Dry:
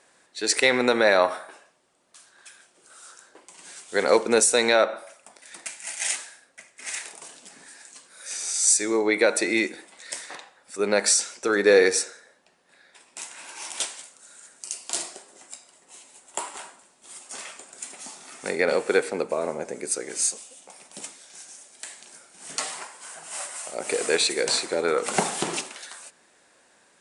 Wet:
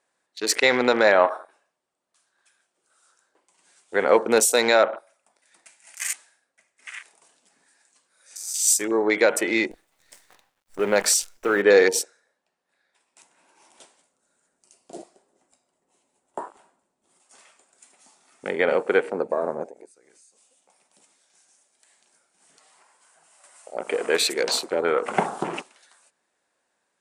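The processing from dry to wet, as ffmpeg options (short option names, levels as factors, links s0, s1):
-filter_complex "[0:a]asettb=1/sr,asplit=3[s0][s1][s2];[s0]atrim=end=9.714[s3];[s1]atrim=start=9.71:end=11.62,asetpts=PTS-STARTPTS,afade=t=in:d=0.004:c=qsin,afade=t=out:st=1.906:d=0.004:c=qsin,acrusher=bits=6:dc=4:mix=0:aa=0.000001[s4];[s2]atrim=start=11.616[s5];[s3][s4]acrossfade=d=0.004:c1=hsin:c2=qsin[s6];[s6][s5]acrossfade=d=0.004:c1=qsin:c2=hsin,asettb=1/sr,asplit=3[s7][s8][s9];[s7]atrim=end=13.224[s10];[s8]atrim=start=13.22:end=17.2,asetpts=PTS-STARTPTS,afade=t=in:d=0.004:c=qsin,afade=t=out:st=3.976:d=0.004:c=qsin,tiltshelf=f=720:g=7.5[s11];[s9]atrim=start=17.196[s12];[s10][s11]acrossfade=d=0.004:c1=hsin:c2=qsin[s13];[s13][s12]acrossfade=d=0.004:c1=qsin:c2=hsin,asettb=1/sr,asplit=3[s14][s15][s16];[s14]atrim=end=19.674[s17];[s15]atrim=start=19.67:end=23.44,asetpts=PTS-STARTPTS,afade=t=in:d=0.004:c=qsin,afade=t=out:st=3.766:d=0.004:c=qsin,acompressor=threshold=0.0112:ratio=5:attack=3.2:release=140:knee=1:detection=peak[s18];[s16]atrim=start=23.436[s19];[s17][s18]acrossfade=d=0.004:c1=hsin:c2=qsin[s20];[s20][s19]acrossfade=d=0.004:c1=qsin:c2=hsin,afwtdn=0.0251,equalizer=f=900:t=o:w=1.7:g=3"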